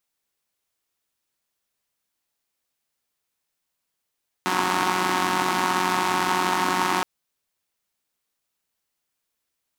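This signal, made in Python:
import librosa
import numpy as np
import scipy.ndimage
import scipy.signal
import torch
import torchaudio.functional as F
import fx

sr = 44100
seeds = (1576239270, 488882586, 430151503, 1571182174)

y = fx.engine_four(sr, seeds[0], length_s=2.57, rpm=5500, resonances_hz=(300.0, 920.0))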